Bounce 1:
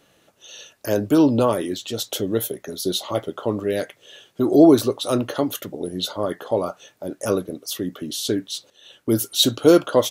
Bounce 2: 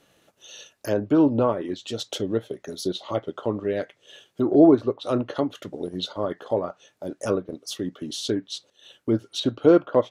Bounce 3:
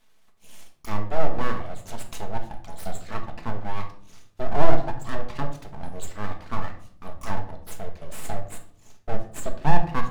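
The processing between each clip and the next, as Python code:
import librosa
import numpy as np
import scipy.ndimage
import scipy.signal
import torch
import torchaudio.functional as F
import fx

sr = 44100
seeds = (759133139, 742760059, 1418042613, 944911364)

y1 = fx.env_lowpass_down(x, sr, base_hz=1900.0, full_db=-17.0)
y1 = fx.transient(y1, sr, attack_db=0, sustain_db=-5)
y1 = F.gain(torch.from_numpy(y1), -2.5).numpy()
y2 = np.abs(y1)
y2 = fx.room_shoebox(y2, sr, seeds[0], volume_m3=790.0, walls='furnished', distance_m=1.5)
y2 = F.gain(torch.from_numpy(y2), -4.5).numpy()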